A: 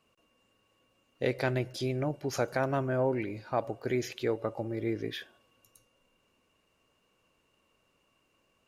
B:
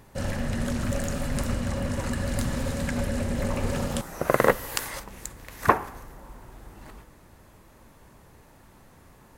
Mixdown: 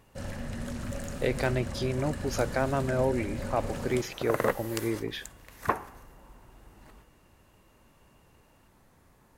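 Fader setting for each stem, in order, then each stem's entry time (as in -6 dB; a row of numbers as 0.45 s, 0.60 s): +1.5 dB, -8.0 dB; 0.00 s, 0.00 s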